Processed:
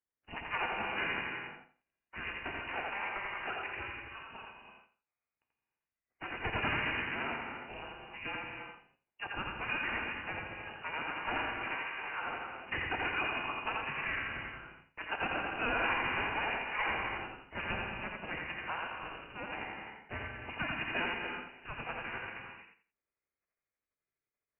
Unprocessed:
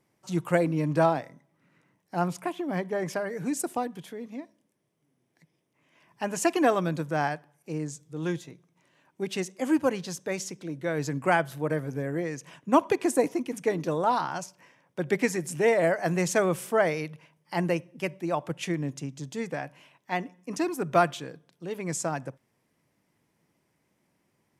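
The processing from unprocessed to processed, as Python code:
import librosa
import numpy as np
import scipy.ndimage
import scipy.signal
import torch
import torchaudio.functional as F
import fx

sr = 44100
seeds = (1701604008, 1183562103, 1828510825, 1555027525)

p1 = fx.spec_gate(x, sr, threshold_db=-20, keep='weak')
p2 = scipy.signal.sosfilt(scipy.signal.butter(4, 340.0, 'highpass', fs=sr, output='sos'), p1)
p3 = fx.leveller(p2, sr, passes=3)
p4 = fx.freq_invert(p3, sr, carrier_hz=2800)
p5 = p4 + fx.echo_feedback(p4, sr, ms=85, feedback_pct=23, wet_db=-3.5, dry=0)
p6 = fx.rev_gated(p5, sr, seeds[0], gate_ms=380, shape='flat', drr_db=2.0)
p7 = fx.formant_shift(p6, sr, semitones=5)
y = p7 * 10.0 ** (-5.5 / 20.0)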